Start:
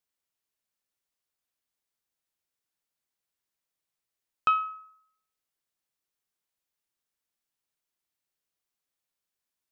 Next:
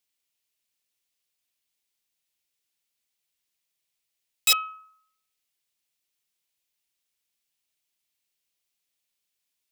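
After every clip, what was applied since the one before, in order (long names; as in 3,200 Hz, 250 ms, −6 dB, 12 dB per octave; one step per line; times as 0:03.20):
wrap-around overflow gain 20 dB
high shelf with overshoot 1,900 Hz +6.5 dB, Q 1.5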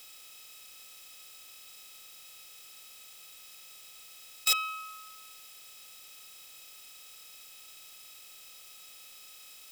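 compressor on every frequency bin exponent 0.4
level −7 dB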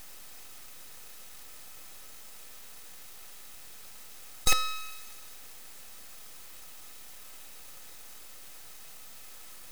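full-wave rectification
level +5.5 dB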